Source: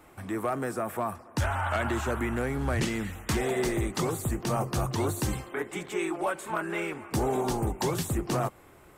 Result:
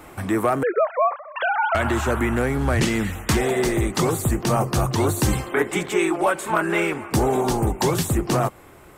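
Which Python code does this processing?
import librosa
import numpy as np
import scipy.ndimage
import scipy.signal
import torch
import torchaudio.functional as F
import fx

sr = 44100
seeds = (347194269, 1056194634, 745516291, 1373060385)

y = fx.sine_speech(x, sr, at=(0.63, 1.75))
y = fx.rider(y, sr, range_db=4, speed_s=0.5)
y = F.gain(torch.from_numpy(y), 8.5).numpy()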